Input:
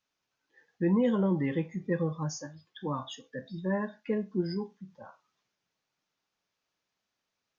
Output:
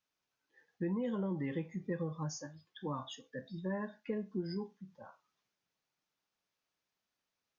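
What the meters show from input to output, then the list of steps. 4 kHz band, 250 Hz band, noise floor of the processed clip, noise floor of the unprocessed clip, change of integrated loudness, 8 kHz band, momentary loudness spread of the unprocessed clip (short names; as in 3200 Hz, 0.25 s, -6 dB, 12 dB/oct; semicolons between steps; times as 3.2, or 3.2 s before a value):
-5.0 dB, -8.5 dB, under -85 dBFS, -85 dBFS, -8.0 dB, n/a, 16 LU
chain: compressor, threshold -28 dBFS, peak gain reduction 6.5 dB; gain -4.5 dB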